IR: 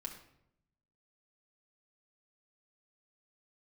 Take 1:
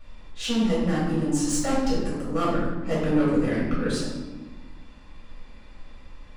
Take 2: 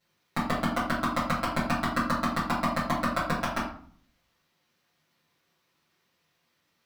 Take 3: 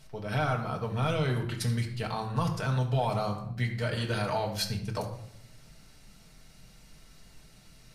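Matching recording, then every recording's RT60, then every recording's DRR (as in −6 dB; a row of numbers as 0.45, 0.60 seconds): 3; 1.3, 0.50, 0.75 seconds; −8.0, −12.0, 0.0 decibels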